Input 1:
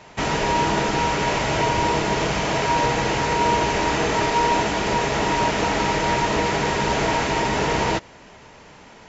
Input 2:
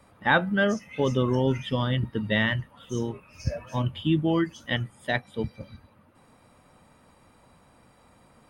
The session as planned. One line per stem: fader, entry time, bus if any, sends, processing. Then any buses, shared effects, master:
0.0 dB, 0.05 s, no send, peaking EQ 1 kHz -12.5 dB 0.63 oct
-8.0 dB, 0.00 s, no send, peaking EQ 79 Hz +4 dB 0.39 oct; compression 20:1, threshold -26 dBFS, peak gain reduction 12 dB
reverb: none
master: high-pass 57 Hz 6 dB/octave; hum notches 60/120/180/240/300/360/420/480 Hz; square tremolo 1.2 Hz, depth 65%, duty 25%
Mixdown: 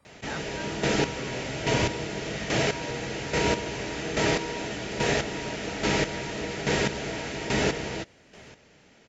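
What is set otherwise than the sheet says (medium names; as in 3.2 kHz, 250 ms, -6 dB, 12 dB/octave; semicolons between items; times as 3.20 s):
stem 2: missing compression 20:1, threshold -26 dBFS, peak gain reduction 12 dB; master: missing hum notches 60/120/180/240/300/360/420/480 Hz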